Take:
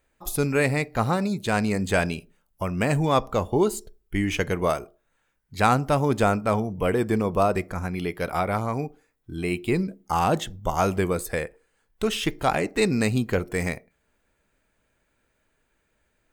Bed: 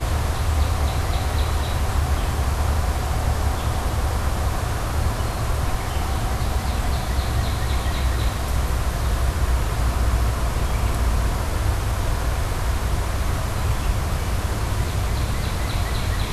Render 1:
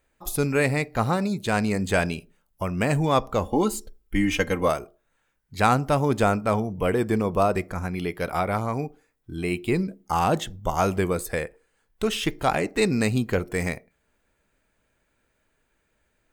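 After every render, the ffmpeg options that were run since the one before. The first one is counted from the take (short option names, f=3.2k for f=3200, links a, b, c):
-filter_complex "[0:a]asettb=1/sr,asplit=3[a][b][c];[a]atrim=end=3.434[d];[b]atrim=start=3.43:end=4.68,asetpts=PTS-STARTPTS,afade=t=in:d=0.004:c=qsin,afade=t=out:st=1.246:d=0.004:c=qsin,aecho=1:1:3.8:0.68,atrim=end_sample=55125[e];[c]atrim=start=4.676[f];[d][e]acrossfade=d=0.004:c1=hsin:c2=qsin[g];[g][f]acrossfade=d=0.004:c1=qsin:c2=hsin"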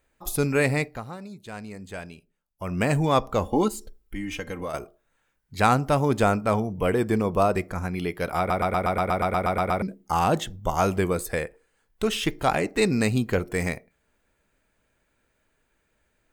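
-filter_complex "[0:a]asettb=1/sr,asplit=3[a][b][c];[a]atrim=end=3.684[d];[b]atrim=start=3.68:end=4.74,asetpts=PTS-STARTPTS,afade=t=in:d=0.004:c=qsin,afade=t=out:st=1.056:d=0.004:c=qsin,acompressor=threshold=-33dB:ratio=2.5:attack=3.2:release=140:knee=1:detection=peak[e];[c]atrim=start=4.736[f];[d][e]acrossfade=d=0.004:c1=hsin:c2=qsin[g];[g][f]acrossfade=d=0.004:c1=qsin:c2=hsin,asplit=15[h][i][j][k][l][m][n][o][p][q][r][s][t][u][v];[h]atrim=end=1.01,asetpts=PTS-STARTPTS,afade=t=out:st=0.85:d=0.16:silence=0.188365[w];[i]atrim=start=1.01:end=2.57,asetpts=PTS-STARTPTS,volume=-14.5dB[x];[j]atrim=start=2.57:end=8.502,asetpts=PTS-STARTPTS,afade=t=in:d=0.16:silence=0.188365[y];[k]atrim=start=8.378:end=8.502[z];[l]atrim=start=8.378:end=8.502[aa];[m]atrim=start=8.378:end=8.502[ab];[n]atrim=start=8.378:end=8.502[ac];[o]atrim=start=8.378:end=8.502[ad];[p]atrim=start=8.378:end=8.502[ae];[q]atrim=start=8.378:end=8.502[af];[r]atrim=start=8.378:end=8.502[ag];[s]atrim=start=8.378:end=8.502[ah];[t]atrim=start=8.378:end=8.502[ai];[u]atrim=start=8.378:end=8.502[aj];[v]atrim=start=9.818[ak];[w][x][y]concat=n=3:v=0:a=1[al];[al][z]acrossfade=d=0.004:c1=hsin:c2=hsin[am];[am][aa]acrossfade=d=0.004:c1=hsin:c2=hsin[an];[an][ab]acrossfade=d=0.004:c1=hsin:c2=hsin[ao];[ao][ac]acrossfade=d=0.004:c1=hsin:c2=hsin[ap];[ap][ad]acrossfade=d=0.004:c1=hsin:c2=hsin[aq];[aq][ae]acrossfade=d=0.004:c1=hsin:c2=hsin[ar];[ar][af]acrossfade=d=0.004:c1=hsin:c2=hsin[as];[as][ag]acrossfade=d=0.004:c1=hsin:c2=hsin[at];[at][ah]acrossfade=d=0.004:c1=hsin:c2=hsin[au];[au][ai]acrossfade=d=0.004:c1=hsin:c2=hsin[av];[av][aj]acrossfade=d=0.004:c1=hsin:c2=hsin[aw];[aw][ak]acrossfade=d=0.004:c1=hsin:c2=hsin"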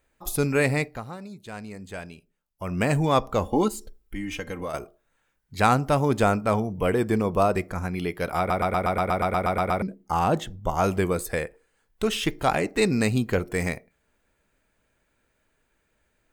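-filter_complex "[0:a]asettb=1/sr,asplit=3[a][b][c];[a]atrim=end=9.834[d];[b]atrim=start=9.83:end=10.84,asetpts=PTS-STARTPTS,afade=t=in:d=0.004:c=qsin,afade=t=out:st=1.006:d=0.004:c=qsin,highshelf=f=2.2k:g=-5.5[e];[c]atrim=start=10.836[f];[d][e]acrossfade=d=0.004:c1=hsin:c2=qsin[g];[g][f]acrossfade=d=0.004:c1=qsin:c2=hsin"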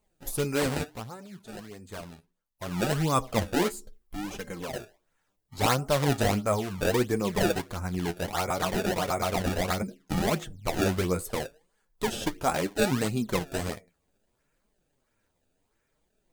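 -filter_complex "[0:a]acrossover=split=3200[a][b];[a]acrusher=samples=24:mix=1:aa=0.000001:lfo=1:lforange=38.4:lforate=1.5[c];[c][b]amix=inputs=2:normalize=0,flanger=delay=4.5:depth=7.6:regen=31:speed=0.68:shape=triangular"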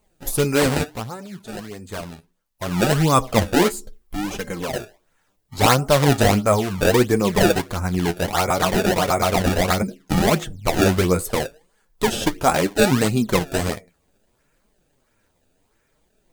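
-af "volume=9dB,alimiter=limit=-3dB:level=0:latency=1"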